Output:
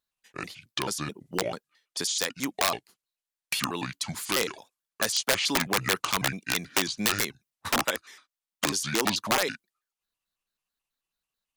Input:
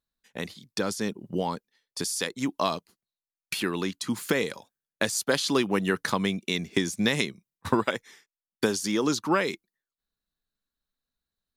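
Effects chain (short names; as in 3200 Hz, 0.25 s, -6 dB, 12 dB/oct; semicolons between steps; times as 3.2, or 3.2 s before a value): trilling pitch shifter -6.5 st, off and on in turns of 0.109 s; wrapped overs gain 16.5 dB; low shelf 360 Hz -11 dB; gain +3 dB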